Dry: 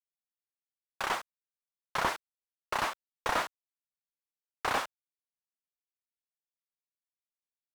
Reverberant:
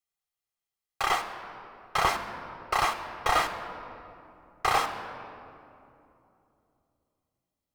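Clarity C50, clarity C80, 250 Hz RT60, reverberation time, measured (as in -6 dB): 9.0 dB, 10.0 dB, 3.7 s, 2.8 s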